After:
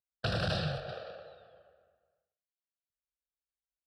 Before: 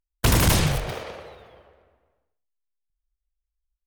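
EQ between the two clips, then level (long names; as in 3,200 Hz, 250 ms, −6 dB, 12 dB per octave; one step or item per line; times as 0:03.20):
loudspeaker in its box 160–5,200 Hz, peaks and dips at 410 Hz −10 dB, 1,100 Hz −10 dB, 2,200 Hz −8 dB, 3,200 Hz −9 dB
phaser with its sweep stopped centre 1,400 Hz, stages 8
−3.5 dB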